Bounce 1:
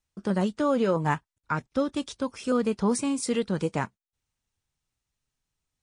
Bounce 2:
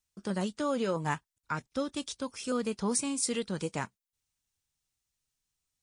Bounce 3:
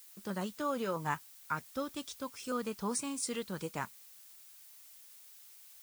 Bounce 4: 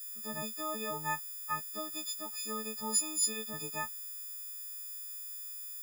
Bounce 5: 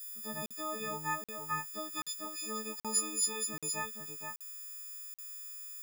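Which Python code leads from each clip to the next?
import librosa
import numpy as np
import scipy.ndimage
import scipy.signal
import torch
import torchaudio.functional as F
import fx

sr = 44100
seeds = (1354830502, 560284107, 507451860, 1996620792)

y1 = fx.high_shelf(x, sr, hz=3000.0, db=11.0)
y1 = F.gain(torch.from_numpy(y1), -7.0).numpy()
y2 = fx.dynamic_eq(y1, sr, hz=1200.0, q=1.2, threshold_db=-47.0, ratio=4.0, max_db=6)
y2 = fx.dmg_noise_colour(y2, sr, seeds[0], colour='blue', level_db=-50.0)
y2 = F.gain(torch.from_numpy(y2), -6.0).numpy()
y3 = fx.freq_snap(y2, sr, grid_st=6)
y3 = F.gain(torch.from_numpy(y3), -5.0).numpy()
y4 = y3 + 10.0 ** (-6.0 / 20.0) * np.pad(y3, (int(470 * sr / 1000.0), 0))[:len(y3)]
y4 = fx.buffer_crackle(y4, sr, first_s=0.46, period_s=0.78, block=2048, kind='zero')
y4 = F.gain(torch.from_numpy(y4), -1.0).numpy()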